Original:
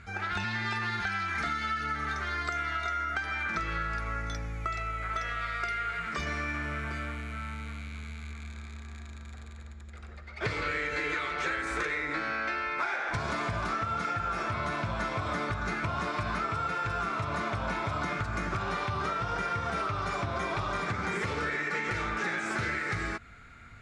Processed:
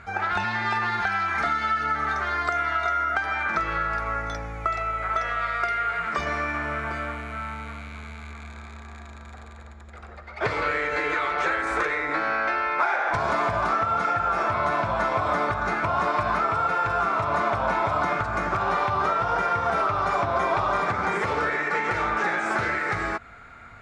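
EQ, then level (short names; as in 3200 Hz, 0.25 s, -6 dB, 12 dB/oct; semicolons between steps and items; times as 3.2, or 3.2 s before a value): bell 800 Hz +12.5 dB 2 oct; 0.0 dB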